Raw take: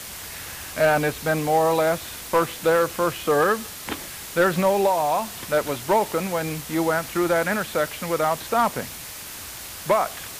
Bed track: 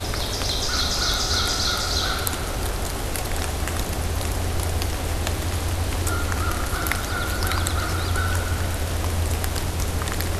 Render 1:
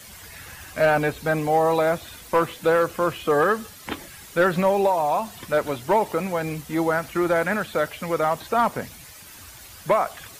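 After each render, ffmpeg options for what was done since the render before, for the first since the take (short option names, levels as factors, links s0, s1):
-af "afftdn=nr=10:nf=-37"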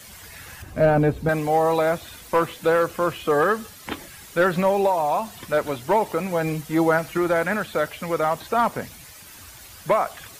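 -filter_complex "[0:a]asettb=1/sr,asplit=3[s0][s1][s2];[s0]atrim=end=0.624[s3];[s1]atrim=start=0.62:end=1.29,asetpts=PTS-STARTPTS,afade=t=in:d=0.004:c=qsin,afade=t=out:st=0.666:d=0.004:c=qsin,tiltshelf=f=720:g=9[s4];[s2]atrim=start=1.286[s5];[s3][s4]acrossfade=d=0.004:c1=hsin:c2=qsin[s6];[s6][s5]acrossfade=d=0.004:c1=qsin:c2=hsin,asettb=1/sr,asplit=3[s7][s8][s9];[s7]atrim=end=6.304[s10];[s8]atrim=start=6.3:end=7.18,asetpts=PTS-STARTPTS,afade=t=in:d=0.004:c=qsin,afade=t=out:st=0.876:d=0.004:c=qsin,aecho=1:1:6.3:0.54,atrim=end_sample=38808[s11];[s9]atrim=start=7.176[s12];[s10][s11]acrossfade=d=0.004:c1=hsin:c2=qsin[s13];[s13][s12]acrossfade=d=0.004:c1=qsin:c2=hsin"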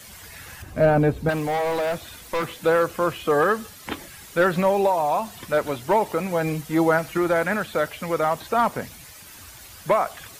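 -filter_complex "[0:a]asettb=1/sr,asplit=3[s0][s1][s2];[s0]atrim=end=1.304[s3];[s1]atrim=start=1.3:end=2.51,asetpts=PTS-STARTPTS,afade=t=in:d=0.004:c=qsin,afade=t=out:st=1.206:d=0.004:c=qsin,volume=11.2,asoftclip=hard,volume=0.0891[s4];[s2]atrim=start=2.506[s5];[s3][s4]acrossfade=d=0.004:c1=hsin:c2=qsin[s6];[s6][s5]acrossfade=d=0.004:c1=qsin:c2=hsin"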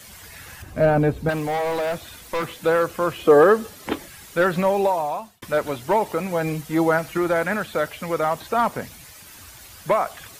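-filter_complex "[0:a]asettb=1/sr,asplit=3[s0][s1][s2];[s0]atrim=end=3.184[s3];[s1]atrim=start=3.18:end=3.98,asetpts=PTS-STARTPTS,afade=t=in:d=0.004:c=qsin,afade=t=out:st=0.796:d=0.004:c=qsin,equalizer=f=410:w=0.73:g=8.5[s4];[s2]atrim=start=3.976[s5];[s3][s4]acrossfade=d=0.004:c1=hsin:c2=qsin[s6];[s6][s5]acrossfade=d=0.004:c1=qsin:c2=hsin,asplit=2[s7][s8];[s7]atrim=end=5.42,asetpts=PTS-STARTPTS,afade=t=out:st=4.92:d=0.5[s9];[s8]atrim=start=5.42,asetpts=PTS-STARTPTS,afade=t=in:d=0.004:c=hsin[s10];[s9][s10]concat=n=2:v=0:a=1"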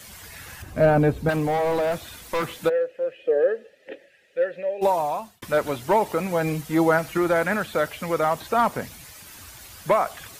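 -filter_complex "[0:a]asettb=1/sr,asplit=3[s0][s1][s2];[s0]atrim=end=1.364[s3];[s1]atrim=start=1.36:end=1.92,asetpts=PTS-STARTPTS,afade=t=in:d=0.004:c=qsin,afade=t=out:st=0.556:d=0.004:c=qsin,tiltshelf=f=860:g=3.5[s4];[s2]atrim=start=1.916[s5];[s3][s4]acrossfade=d=0.004:c1=hsin:c2=qsin[s6];[s6][s5]acrossfade=d=0.004:c1=qsin:c2=hsin,asplit=3[s7][s8][s9];[s7]afade=t=out:st=2.68:d=0.02[s10];[s8]asplit=3[s11][s12][s13];[s11]bandpass=f=530:t=q:w=8,volume=1[s14];[s12]bandpass=f=1840:t=q:w=8,volume=0.501[s15];[s13]bandpass=f=2480:t=q:w=8,volume=0.355[s16];[s14][s15][s16]amix=inputs=3:normalize=0,afade=t=in:st=2.68:d=0.02,afade=t=out:st=4.81:d=0.02[s17];[s9]afade=t=in:st=4.81:d=0.02[s18];[s10][s17][s18]amix=inputs=3:normalize=0"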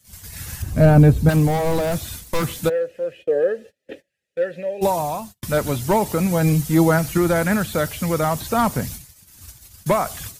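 -af "agate=range=0.0631:threshold=0.00891:ratio=16:detection=peak,bass=f=250:g=14,treble=f=4000:g=11"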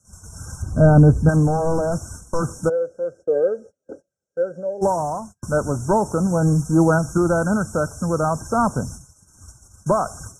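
-af "afftfilt=real='re*(1-between(b*sr/4096,1600,5300))':imag='im*(1-between(b*sr/4096,1600,5300))':win_size=4096:overlap=0.75,lowpass=f=8600:w=0.5412,lowpass=f=8600:w=1.3066"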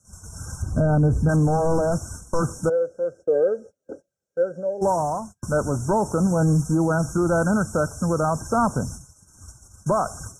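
-af "alimiter=limit=0.237:level=0:latency=1:release=29"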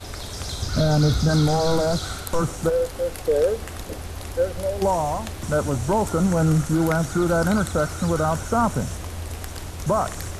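-filter_complex "[1:a]volume=0.376[s0];[0:a][s0]amix=inputs=2:normalize=0"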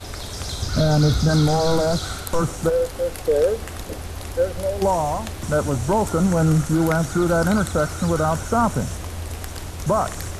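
-af "volume=1.19"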